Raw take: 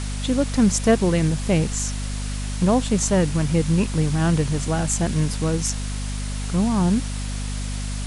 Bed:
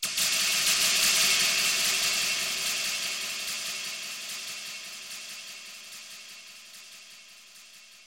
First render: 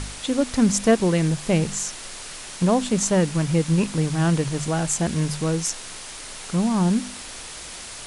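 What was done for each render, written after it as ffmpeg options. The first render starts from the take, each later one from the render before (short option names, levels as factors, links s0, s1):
-af "bandreject=f=50:t=h:w=4,bandreject=f=100:t=h:w=4,bandreject=f=150:t=h:w=4,bandreject=f=200:t=h:w=4,bandreject=f=250:t=h:w=4"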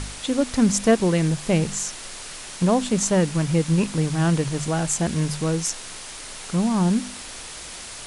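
-af anull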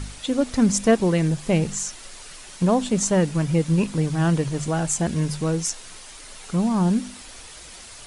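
-af "afftdn=nr=7:nf=-37"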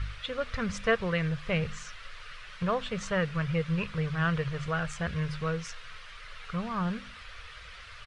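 -af "firequalizer=gain_entry='entry(100,0);entry(280,-25);entry(470,-6);entry(830,-13);entry(1200,3);entry(3000,-2);entry(7200,-23);entry(12000,-30)':delay=0.05:min_phase=1"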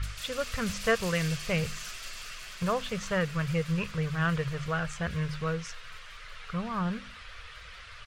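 -filter_complex "[1:a]volume=0.133[s0];[0:a][s0]amix=inputs=2:normalize=0"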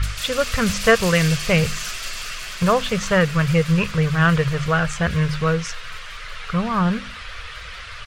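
-af "volume=3.76,alimiter=limit=0.794:level=0:latency=1"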